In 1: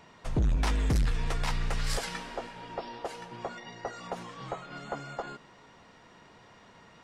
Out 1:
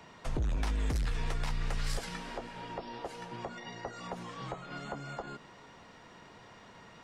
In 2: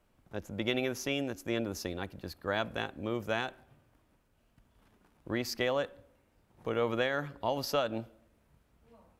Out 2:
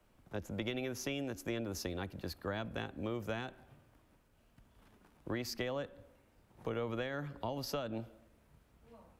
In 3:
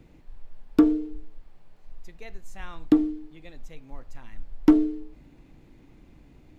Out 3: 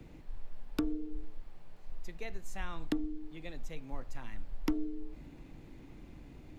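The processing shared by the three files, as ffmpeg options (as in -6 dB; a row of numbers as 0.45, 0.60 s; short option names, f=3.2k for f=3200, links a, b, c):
-filter_complex "[0:a]acrossover=split=89|320[a][b][c];[a]acompressor=threshold=-32dB:ratio=4[d];[b]acompressor=threshold=-43dB:ratio=4[e];[c]acompressor=threshold=-41dB:ratio=4[f];[d][e][f]amix=inputs=3:normalize=0,volume=1.5dB"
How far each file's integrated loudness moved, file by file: -4.5, -6.0, -18.5 LU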